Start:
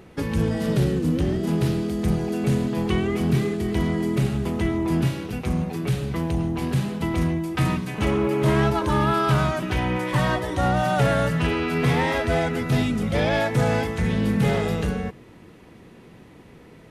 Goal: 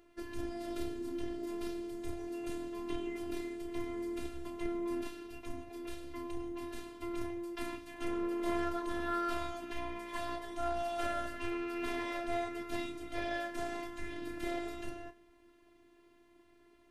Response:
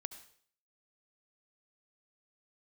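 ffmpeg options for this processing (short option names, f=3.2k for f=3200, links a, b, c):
-filter_complex "[0:a]asplit=2[a][b];[1:a]atrim=start_sample=2205,adelay=31[c];[b][c]afir=irnorm=-1:irlink=0,volume=-6.5dB[d];[a][d]amix=inputs=2:normalize=0,aeval=exprs='0.398*(cos(1*acos(clip(val(0)/0.398,-1,1)))-cos(1*PI/2))+0.0562*(cos(3*acos(clip(val(0)/0.398,-1,1)))-cos(3*PI/2))':c=same,afftfilt=real='hypot(re,im)*cos(PI*b)':imag='0':win_size=512:overlap=0.75,volume=-8dB"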